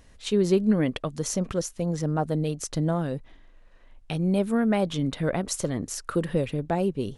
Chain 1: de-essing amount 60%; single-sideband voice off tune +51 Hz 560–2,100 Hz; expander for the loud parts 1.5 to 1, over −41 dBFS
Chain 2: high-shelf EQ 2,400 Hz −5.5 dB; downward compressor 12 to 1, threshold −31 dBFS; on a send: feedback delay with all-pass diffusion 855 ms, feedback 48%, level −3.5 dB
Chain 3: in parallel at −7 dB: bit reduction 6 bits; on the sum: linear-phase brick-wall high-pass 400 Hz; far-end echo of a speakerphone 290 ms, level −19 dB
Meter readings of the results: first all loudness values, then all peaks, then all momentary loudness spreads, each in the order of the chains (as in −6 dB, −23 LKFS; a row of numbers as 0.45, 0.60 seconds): −38.5, −35.5, −29.0 LKFS; −16.5, −18.5, −11.5 dBFS; 12, 4, 5 LU